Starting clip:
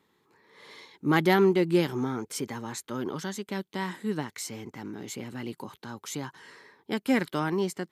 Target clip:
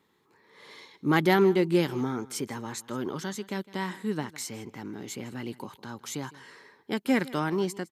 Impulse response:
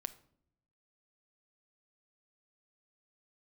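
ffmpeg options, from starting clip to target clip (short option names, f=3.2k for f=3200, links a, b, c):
-af "aecho=1:1:158:0.1"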